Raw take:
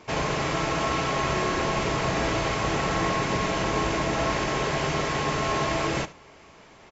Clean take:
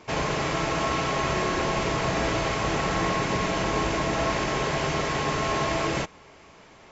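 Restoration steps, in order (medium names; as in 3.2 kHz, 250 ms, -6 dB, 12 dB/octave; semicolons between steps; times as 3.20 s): inverse comb 73 ms -18 dB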